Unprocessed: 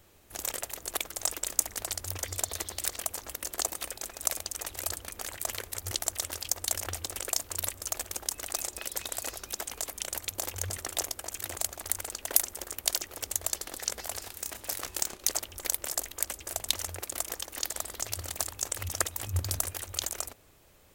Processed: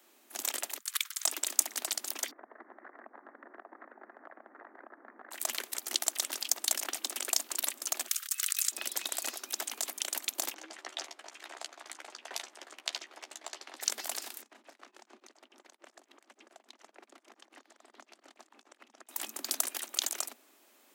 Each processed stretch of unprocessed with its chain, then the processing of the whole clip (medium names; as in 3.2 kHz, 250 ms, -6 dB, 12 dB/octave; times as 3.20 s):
0.78–1.25 s: steep high-pass 1.2 kHz + expander -48 dBFS + band-stop 2.7 kHz, Q 20
2.31–5.31 s: steep low-pass 1.9 kHz 72 dB/octave + compression, threshold -43 dBFS
8.08–8.72 s: steep high-pass 1.2 kHz 72 dB/octave + treble shelf 3.9 kHz +6.5 dB + compressor with a negative ratio -31 dBFS, ratio -0.5
10.54–13.81 s: AM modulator 230 Hz, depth 60% + band-pass 400–4000 Hz + doubling 13 ms -8 dB
14.42–19.09 s: compression 4:1, threshold -40 dBFS + tape spacing loss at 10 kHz 23 dB + tremolo of two beating tones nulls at 7 Hz
whole clip: dynamic bell 3.5 kHz, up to +4 dB, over -44 dBFS, Q 0.91; steep high-pass 220 Hz 96 dB/octave; peaking EQ 490 Hz -8 dB 0.38 oct; trim -1 dB